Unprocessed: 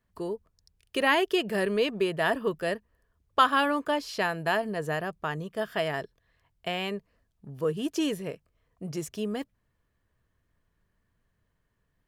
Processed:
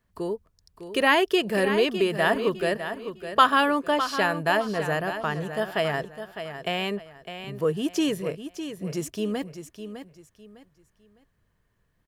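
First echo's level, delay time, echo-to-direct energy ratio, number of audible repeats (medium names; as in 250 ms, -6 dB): -10.0 dB, 606 ms, -9.5 dB, 3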